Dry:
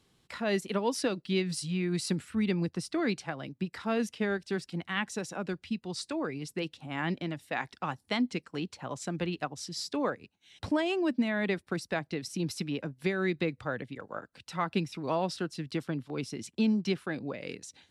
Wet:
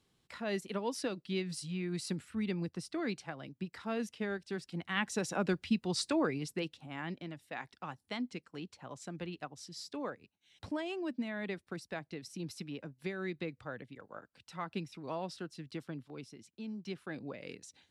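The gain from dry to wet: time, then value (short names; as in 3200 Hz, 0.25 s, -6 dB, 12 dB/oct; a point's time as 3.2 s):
4.57 s -6.5 dB
5.37 s +3 dB
6.19 s +3 dB
7.07 s -9 dB
16.03 s -9 dB
16.58 s -18 dB
17.16 s -6.5 dB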